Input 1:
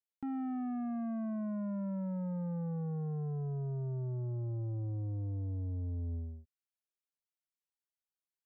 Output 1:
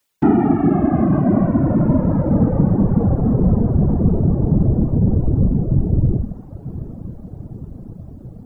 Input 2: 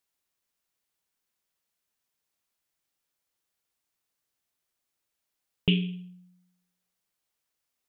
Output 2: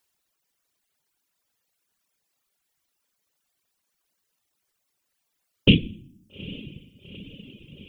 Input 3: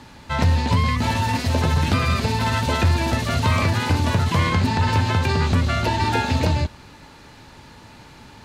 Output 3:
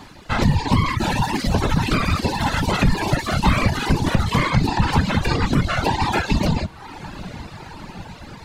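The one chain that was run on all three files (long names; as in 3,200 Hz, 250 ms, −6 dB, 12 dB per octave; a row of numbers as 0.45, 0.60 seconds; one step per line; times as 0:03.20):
random phases in short frames
feedback delay with all-pass diffusion 845 ms, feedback 69%, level −16 dB
reverb reduction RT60 1.2 s
normalise the peak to −3 dBFS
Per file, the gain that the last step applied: +24.0, +8.5, +2.5 decibels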